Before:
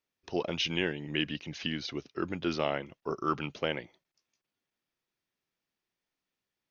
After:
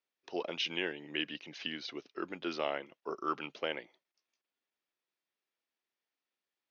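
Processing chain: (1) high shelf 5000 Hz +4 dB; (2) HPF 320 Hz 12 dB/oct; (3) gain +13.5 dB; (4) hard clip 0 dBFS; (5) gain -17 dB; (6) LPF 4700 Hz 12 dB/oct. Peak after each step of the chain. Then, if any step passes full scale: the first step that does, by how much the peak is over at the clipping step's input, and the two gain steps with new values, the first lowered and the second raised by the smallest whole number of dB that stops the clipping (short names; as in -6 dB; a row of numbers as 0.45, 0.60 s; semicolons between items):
-12.5, -15.0, -1.5, -1.5, -18.5, -19.0 dBFS; no overload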